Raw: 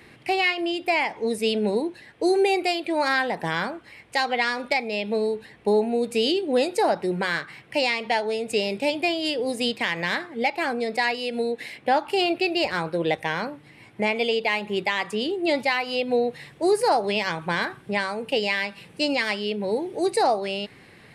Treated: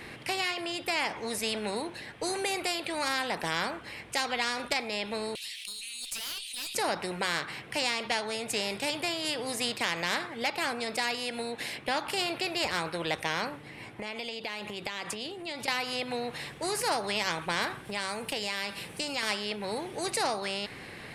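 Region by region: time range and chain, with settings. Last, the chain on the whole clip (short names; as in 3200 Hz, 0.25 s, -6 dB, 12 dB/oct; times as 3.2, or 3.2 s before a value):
5.35–6.75 steep high-pass 2900 Hz + tube stage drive 37 dB, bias 0.2 + fast leveller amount 70%
13.49–15.68 compressor, threshold -31 dBFS + mismatched tape noise reduction decoder only
17.85–19.23 high shelf 8000 Hz +8 dB + compressor 3:1, threshold -26 dBFS
whole clip: dynamic EQ 1000 Hz, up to +4 dB, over -33 dBFS, Q 0.72; spectral compressor 2:1; gain -5 dB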